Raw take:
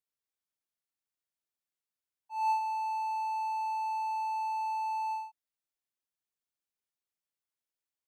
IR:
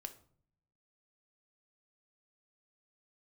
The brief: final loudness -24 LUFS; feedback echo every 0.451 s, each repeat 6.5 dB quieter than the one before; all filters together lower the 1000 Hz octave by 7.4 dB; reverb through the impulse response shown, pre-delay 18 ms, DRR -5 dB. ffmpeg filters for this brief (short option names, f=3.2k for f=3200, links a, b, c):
-filter_complex "[0:a]equalizer=f=1k:t=o:g=-8.5,aecho=1:1:451|902|1353|1804|2255|2706:0.473|0.222|0.105|0.0491|0.0231|0.0109,asplit=2[a][b];[1:a]atrim=start_sample=2205,adelay=18[c];[b][c]afir=irnorm=-1:irlink=0,volume=9dB[d];[a][d]amix=inputs=2:normalize=0,volume=5.5dB"